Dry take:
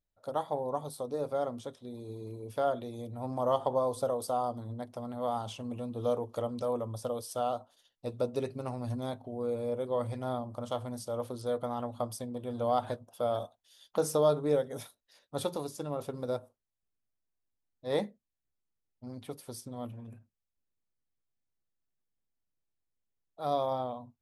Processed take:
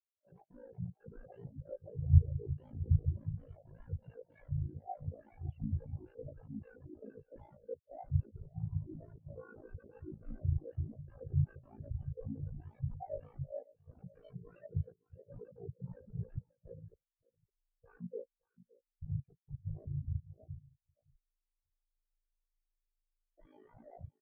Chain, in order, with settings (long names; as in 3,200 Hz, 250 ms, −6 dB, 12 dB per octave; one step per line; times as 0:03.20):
delay that plays each chunk backwards 516 ms, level −13 dB
reverb reduction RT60 0.63 s
low-pass filter 4,300 Hz 12 dB per octave
low-shelf EQ 240 Hz +7 dB
in parallel at +2 dB: downward compressor 6 to 1, threshold −38 dBFS, peak gain reduction 16.5 dB
on the sum: soft clipping −30 dBFS, distortion −8 dB
phaser with its sweep stopped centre 1,100 Hz, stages 6
sine wavefolder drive 12 dB, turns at −26.5 dBFS
pitch-shifted copies added −12 semitones −8 dB, −5 semitones −6 dB
single-tap delay 563 ms −5.5 dB
ring modulation 27 Hz
every bin expanded away from the loudest bin 4 to 1
level +7 dB